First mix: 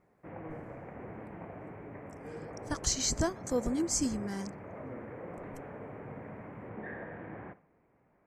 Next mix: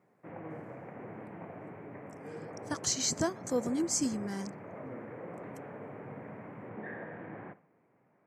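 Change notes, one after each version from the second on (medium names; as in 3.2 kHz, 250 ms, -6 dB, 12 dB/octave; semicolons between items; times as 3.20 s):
master: add high-pass 110 Hz 24 dB/octave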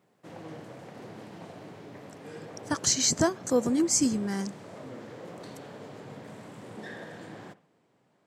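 speech +6.5 dB; background: remove elliptic low-pass 2.3 kHz, stop band 60 dB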